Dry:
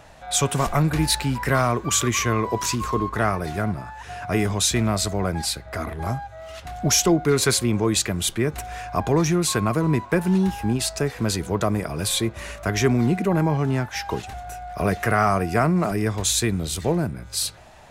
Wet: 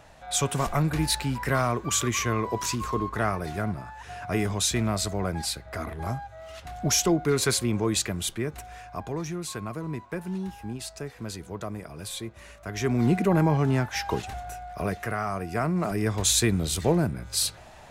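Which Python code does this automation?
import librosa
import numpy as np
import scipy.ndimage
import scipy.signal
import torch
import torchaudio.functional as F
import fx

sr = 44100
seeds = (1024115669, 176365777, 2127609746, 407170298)

y = fx.gain(x, sr, db=fx.line((8.03, -4.5), (9.15, -12.5), (12.65, -12.5), (13.1, -1.0), (14.36, -1.0), (15.24, -11.0), (16.29, -0.5)))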